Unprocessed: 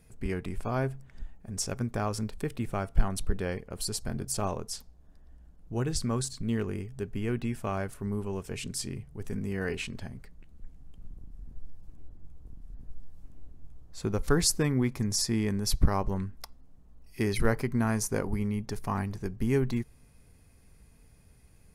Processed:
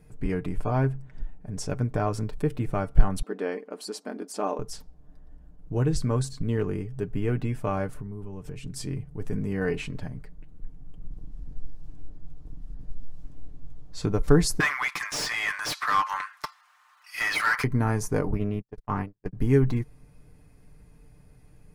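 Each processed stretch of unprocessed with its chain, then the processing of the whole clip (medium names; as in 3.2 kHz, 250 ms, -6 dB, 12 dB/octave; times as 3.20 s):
0.72–2.11 s: treble shelf 12 kHz -7.5 dB + band-stop 1.2 kHz, Q 22
3.22–4.59 s: brick-wall FIR high-pass 200 Hz + treble shelf 10 kHz -10.5 dB
7.95–8.76 s: compression 5:1, threshold -42 dBFS + bass shelf 180 Hz +7.5 dB
11.11–14.06 s: chunks repeated in reverse 107 ms, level -12.5 dB + peaking EQ 4.6 kHz +9 dB 2 oct
14.60–17.64 s: steep high-pass 1.1 kHz + overdrive pedal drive 30 dB, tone 3.4 kHz, clips at -16.5 dBFS
18.31–19.33 s: gate -31 dBFS, range -49 dB + treble shelf 7.7 kHz -9 dB + loudspeaker Doppler distortion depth 0.31 ms
whole clip: treble shelf 2.1 kHz -10 dB; comb 6.7 ms, depth 52%; trim +4.5 dB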